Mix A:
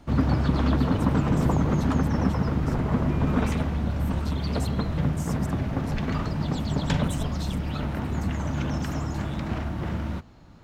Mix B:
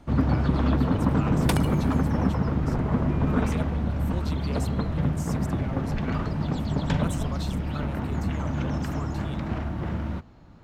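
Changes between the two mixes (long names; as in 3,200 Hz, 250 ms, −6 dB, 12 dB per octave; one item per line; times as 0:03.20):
speech +6.0 dB
second sound: remove linear-phase brick-wall low-pass 1,200 Hz
master: add high-shelf EQ 3,300 Hz −7.5 dB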